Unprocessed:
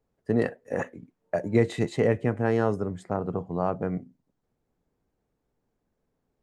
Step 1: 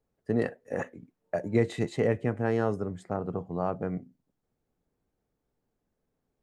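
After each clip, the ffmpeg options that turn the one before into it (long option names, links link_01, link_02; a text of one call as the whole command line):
ffmpeg -i in.wav -af "bandreject=frequency=980:width=22,volume=-3dB" out.wav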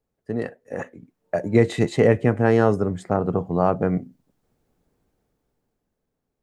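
ffmpeg -i in.wav -af "dynaudnorm=framelen=240:gausssize=11:maxgain=11.5dB" out.wav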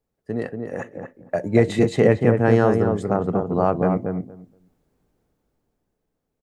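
ffmpeg -i in.wav -filter_complex "[0:a]asplit=2[link_01][link_02];[link_02]adelay=235,lowpass=frequency=1200:poles=1,volume=-4dB,asplit=2[link_03][link_04];[link_04]adelay=235,lowpass=frequency=1200:poles=1,volume=0.16,asplit=2[link_05][link_06];[link_06]adelay=235,lowpass=frequency=1200:poles=1,volume=0.16[link_07];[link_01][link_03][link_05][link_07]amix=inputs=4:normalize=0" out.wav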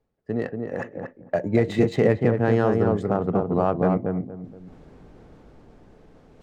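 ffmpeg -i in.wav -af "areverse,acompressor=mode=upward:threshold=-29dB:ratio=2.5,areverse,alimiter=limit=-8.5dB:level=0:latency=1:release=250,adynamicsmooth=sensitivity=5:basefreq=4000" out.wav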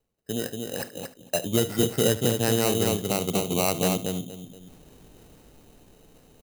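ffmpeg -i in.wav -af "acrusher=samples=13:mix=1:aa=0.000001,highshelf=frequency=5600:gain=11.5,aecho=1:1:74:0.15,volume=-4dB" out.wav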